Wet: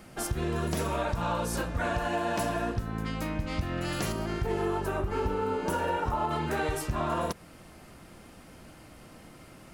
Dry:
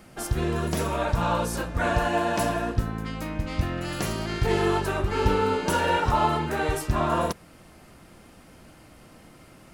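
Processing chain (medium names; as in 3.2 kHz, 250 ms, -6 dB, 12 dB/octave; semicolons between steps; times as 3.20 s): 4.12–6.31 s: graphic EQ 125/2000/4000/8000 Hz -3/-4/-8/-4 dB; compression 5:1, threshold -26 dBFS, peak gain reduction 9 dB; overload inside the chain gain 20.5 dB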